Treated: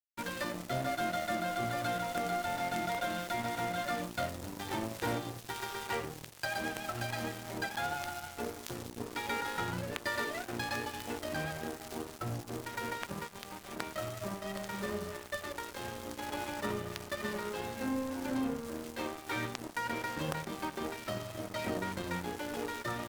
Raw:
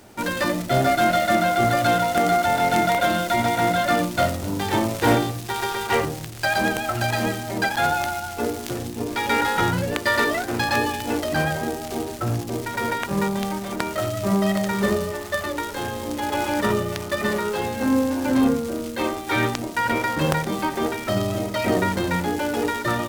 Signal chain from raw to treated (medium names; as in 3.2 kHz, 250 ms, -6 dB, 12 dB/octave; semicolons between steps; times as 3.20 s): compression 2:1, threshold -25 dBFS, peak gain reduction 6.5 dB; de-hum 49.42 Hz, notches 18; crossover distortion -34.5 dBFS; trim -7.5 dB